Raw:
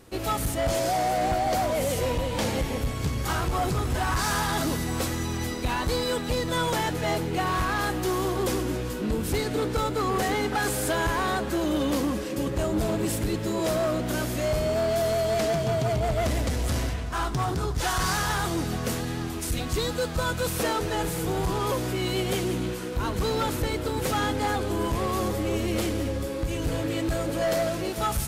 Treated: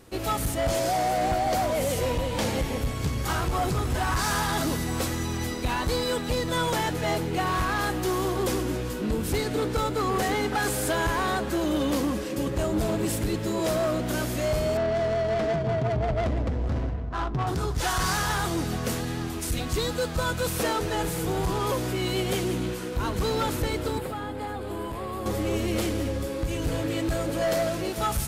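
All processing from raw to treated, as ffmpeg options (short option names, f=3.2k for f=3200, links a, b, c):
-filter_complex "[0:a]asettb=1/sr,asplit=3[a][b][c];[a]atrim=end=14.774[d];[b]atrim=start=14.77:end=17.47,asetpts=PTS-STARTPTS,afade=t=in:d=0.004:c=qsin,afade=t=out:st=2.696:d=0.004:c=qsin,equalizer=f=6.3k:w=0.56:g=8,adynamicsmooth=sensitivity=1:basefreq=640[e];[c]atrim=start=17.466[f];[d][e]acrossfade=d=0.004:c1=hsin:c2=qsin[g];[g][f]acrossfade=d=0.004:c1=qsin:c2=hsin,asettb=1/sr,asplit=3[h][i][j];[h]atrim=end=23.984[k];[i]atrim=start=23.98:end=25.26,asetpts=PTS-STARTPTS,afade=t=in:d=0.004:c=qsin,afade=t=out:st=1.276:d=0.004:c=qsin,equalizer=f=6k:t=o:w=0.37:g=-12.5,acrossover=split=410|1400[l][m][n];[l]acompressor=threshold=-36dB:ratio=4[o];[m]acompressor=threshold=-35dB:ratio=4[p];[n]acompressor=threshold=-47dB:ratio=4[q];[o][p][q]amix=inputs=3:normalize=0[r];[j]atrim=start=25.256[s];[k][r]acrossfade=d=0.004:c1=hsin:c2=qsin[t];[t][s]acrossfade=d=0.004:c1=qsin:c2=hsin"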